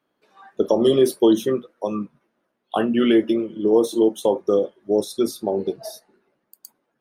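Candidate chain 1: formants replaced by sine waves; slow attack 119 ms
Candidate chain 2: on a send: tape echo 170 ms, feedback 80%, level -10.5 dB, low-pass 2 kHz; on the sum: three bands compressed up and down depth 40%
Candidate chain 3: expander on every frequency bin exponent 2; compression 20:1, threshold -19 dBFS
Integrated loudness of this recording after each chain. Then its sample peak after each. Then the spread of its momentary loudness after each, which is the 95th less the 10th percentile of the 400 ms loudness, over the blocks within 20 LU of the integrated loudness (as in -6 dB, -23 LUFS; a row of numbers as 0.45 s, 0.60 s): -23.0 LUFS, -21.0 LUFS, -28.0 LUFS; -6.5 dBFS, -6.0 dBFS, -12.0 dBFS; 16 LU, 16 LU, 11 LU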